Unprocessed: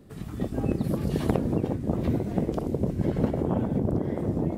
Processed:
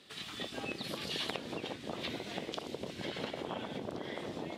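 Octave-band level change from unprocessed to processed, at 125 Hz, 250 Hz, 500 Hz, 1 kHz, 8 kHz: -22.0 dB, -16.5 dB, -11.5 dB, -6.0 dB, no reading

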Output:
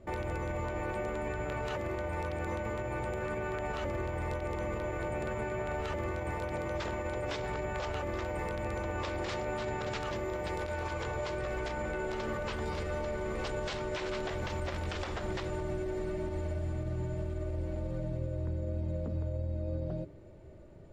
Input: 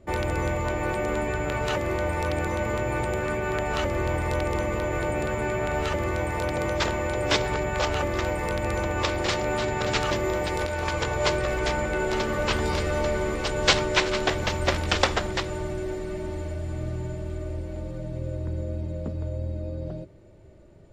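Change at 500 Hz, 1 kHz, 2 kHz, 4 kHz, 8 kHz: -8.5 dB, -9.5 dB, -11.0 dB, -16.0 dB, -15.5 dB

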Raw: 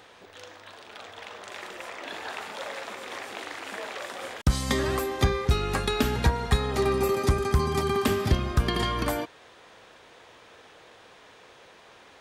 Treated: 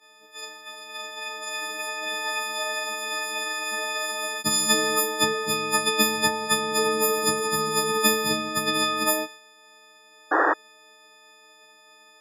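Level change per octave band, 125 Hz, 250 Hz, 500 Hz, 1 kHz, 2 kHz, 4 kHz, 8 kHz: -14.5 dB, -0.5 dB, +1.0 dB, +5.5 dB, +8.0 dB, +9.0 dB, +14.0 dB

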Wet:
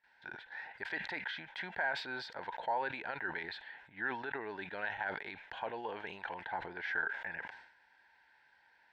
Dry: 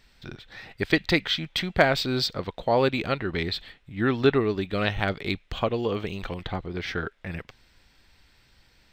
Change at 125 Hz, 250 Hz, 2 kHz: -27.0 dB, -22.5 dB, -6.5 dB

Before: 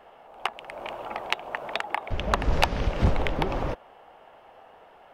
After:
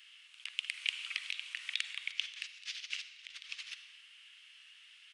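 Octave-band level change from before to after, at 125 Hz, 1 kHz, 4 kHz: under -40 dB, -34.5 dB, -1.5 dB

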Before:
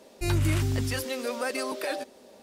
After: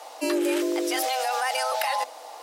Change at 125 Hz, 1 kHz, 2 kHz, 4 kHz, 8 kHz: under -40 dB, +12.0 dB, +4.0 dB, +6.0 dB, +5.0 dB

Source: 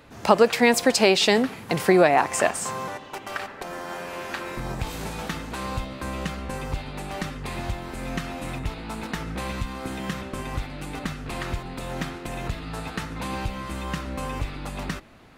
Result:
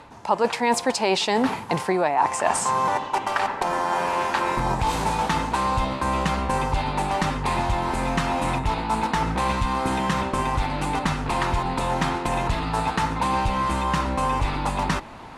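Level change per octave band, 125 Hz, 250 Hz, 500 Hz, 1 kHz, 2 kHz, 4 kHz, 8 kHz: +4.5 dB, +1.0 dB, -2.0 dB, +8.0 dB, +1.0 dB, -0.5 dB, +0.5 dB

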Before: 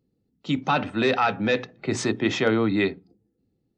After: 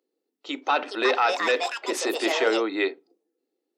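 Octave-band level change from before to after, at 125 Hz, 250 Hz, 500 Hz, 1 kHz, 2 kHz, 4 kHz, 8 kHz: under -30 dB, -6.5 dB, +0.5 dB, +1.0 dB, +1.5 dB, +2.5 dB, +2.0 dB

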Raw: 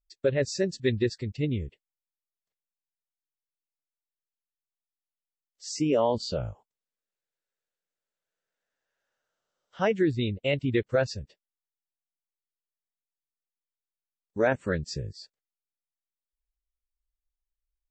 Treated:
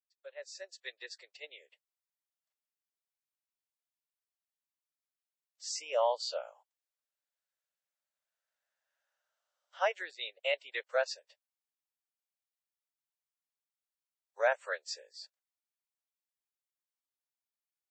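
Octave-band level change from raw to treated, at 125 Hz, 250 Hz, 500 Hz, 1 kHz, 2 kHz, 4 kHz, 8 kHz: under -40 dB, under -35 dB, -8.0 dB, -2.0 dB, -2.5 dB, -3.0 dB, -4.0 dB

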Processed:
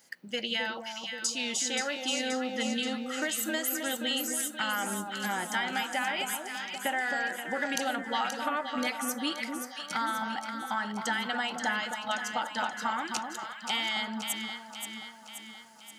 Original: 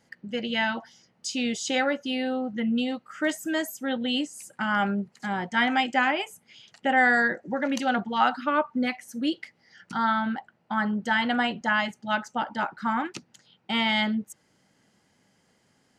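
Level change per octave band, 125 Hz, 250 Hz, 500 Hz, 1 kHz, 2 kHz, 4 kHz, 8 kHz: no reading, -8.5 dB, -5.5 dB, -5.5 dB, -5.0 dB, 0.0 dB, +7.0 dB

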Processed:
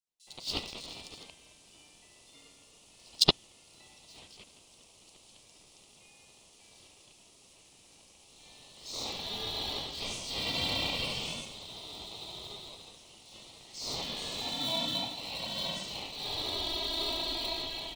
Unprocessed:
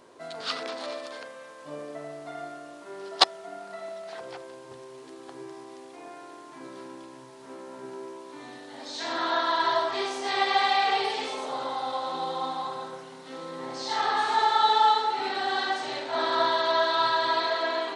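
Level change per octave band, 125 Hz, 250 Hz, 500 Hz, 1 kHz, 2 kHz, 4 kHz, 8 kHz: +7.0 dB, -4.5 dB, -12.5 dB, -20.0 dB, -12.5 dB, -1.5 dB, +2.0 dB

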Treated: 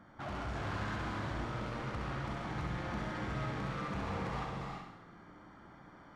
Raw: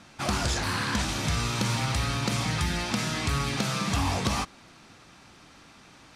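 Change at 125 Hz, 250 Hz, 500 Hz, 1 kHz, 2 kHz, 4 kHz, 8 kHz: -10.5 dB, -10.0 dB, -7.0 dB, -8.5 dB, -11.0 dB, -19.5 dB, -26.5 dB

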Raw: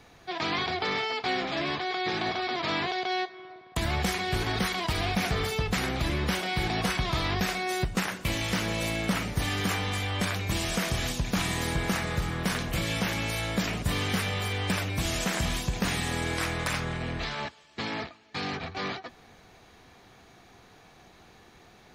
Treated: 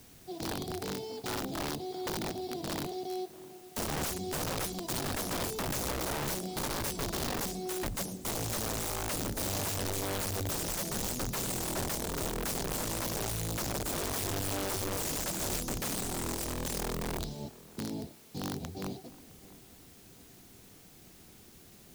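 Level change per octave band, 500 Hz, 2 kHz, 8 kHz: -3.5 dB, -11.5 dB, +2.5 dB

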